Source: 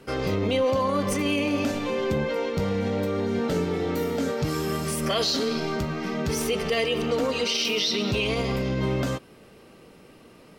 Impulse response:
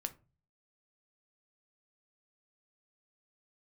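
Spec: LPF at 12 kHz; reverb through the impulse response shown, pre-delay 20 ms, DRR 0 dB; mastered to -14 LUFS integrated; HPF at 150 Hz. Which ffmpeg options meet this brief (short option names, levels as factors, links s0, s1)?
-filter_complex "[0:a]highpass=150,lowpass=12000,asplit=2[s0][s1];[1:a]atrim=start_sample=2205,adelay=20[s2];[s1][s2]afir=irnorm=-1:irlink=0,volume=1.12[s3];[s0][s3]amix=inputs=2:normalize=0,volume=2.99"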